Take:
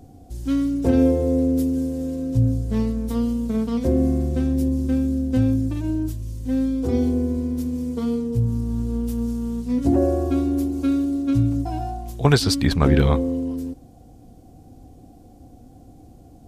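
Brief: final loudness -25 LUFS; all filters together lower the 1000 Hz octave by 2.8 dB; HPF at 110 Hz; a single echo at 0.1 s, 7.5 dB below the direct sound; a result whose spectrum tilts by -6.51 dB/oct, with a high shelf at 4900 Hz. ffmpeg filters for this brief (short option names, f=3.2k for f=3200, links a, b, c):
-af "highpass=110,equalizer=f=1k:t=o:g=-4.5,highshelf=f=4.9k:g=7,aecho=1:1:100:0.422,volume=-3dB"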